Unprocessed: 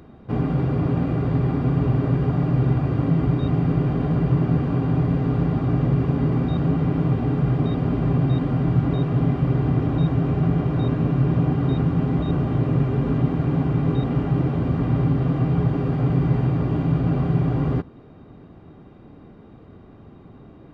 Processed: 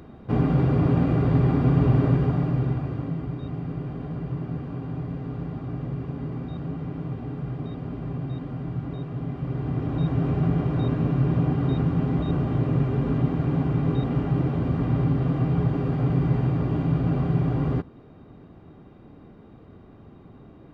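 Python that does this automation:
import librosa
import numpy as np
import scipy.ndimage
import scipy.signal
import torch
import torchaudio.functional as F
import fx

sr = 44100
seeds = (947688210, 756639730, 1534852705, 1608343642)

y = fx.gain(x, sr, db=fx.line((2.04, 1.0), (3.26, -11.0), (9.24, -11.0), (10.23, -2.5)))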